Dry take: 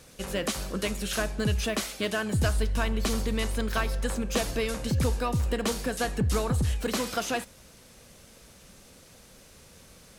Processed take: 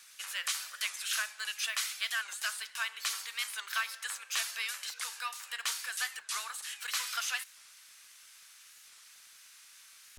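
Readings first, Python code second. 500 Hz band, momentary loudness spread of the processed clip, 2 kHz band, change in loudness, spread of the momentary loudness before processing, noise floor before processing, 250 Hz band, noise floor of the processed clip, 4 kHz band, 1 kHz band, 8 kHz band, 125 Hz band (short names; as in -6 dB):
-30.0 dB, 21 LU, -0.5 dB, -6.0 dB, 4 LU, -54 dBFS, under -40 dB, -57 dBFS, 0.0 dB, -7.5 dB, 0.0 dB, under -40 dB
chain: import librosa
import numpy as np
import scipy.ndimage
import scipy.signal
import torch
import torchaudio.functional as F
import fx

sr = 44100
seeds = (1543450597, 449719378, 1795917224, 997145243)

y = scipy.signal.sosfilt(scipy.signal.butter(4, 1300.0, 'highpass', fs=sr, output='sos'), x)
y = fx.dmg_crackle(y, sr, seeds[0], per_s=36.0, level_db=-51.0)
y = fx.record_warp(y, sr, rpm=45.0, depth_cents=160.0)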